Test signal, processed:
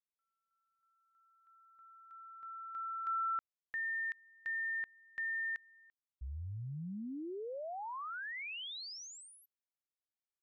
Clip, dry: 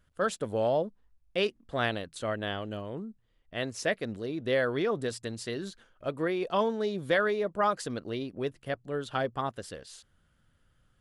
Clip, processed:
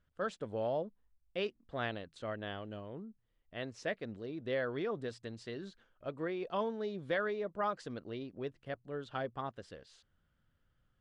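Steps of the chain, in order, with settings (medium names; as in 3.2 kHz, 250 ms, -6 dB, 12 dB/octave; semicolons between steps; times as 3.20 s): distance through air 110 m; trim -7.5 dB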